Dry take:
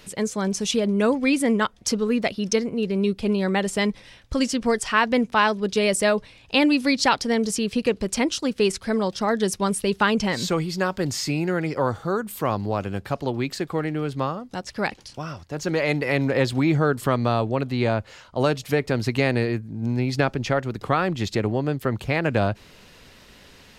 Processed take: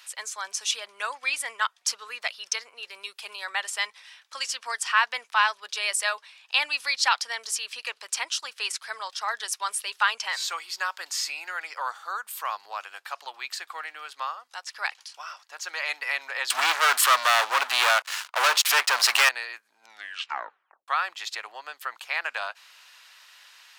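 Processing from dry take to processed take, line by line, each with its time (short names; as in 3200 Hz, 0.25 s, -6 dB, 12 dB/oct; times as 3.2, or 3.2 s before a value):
2.87–3.45 high shelf 9400 Hz +9 dB
16.5–19.29 sample leveller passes 5
19.82 tape stop 1.06 s
whole clip: HPF 980 Hz 24 dB/oct; notch 2100 Hz, Q 25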